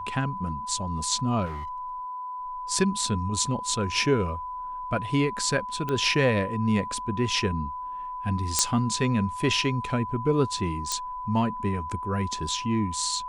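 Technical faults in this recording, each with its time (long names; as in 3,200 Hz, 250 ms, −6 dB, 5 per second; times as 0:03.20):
whistle 1,000 Hz −32 dBFS
0:01.45–0:01.90: clipping −30.5 dBFS
0:05.89: click −16 dBFS
0:08.59: click −4 dBFS
0:10.92: click −12 dBFS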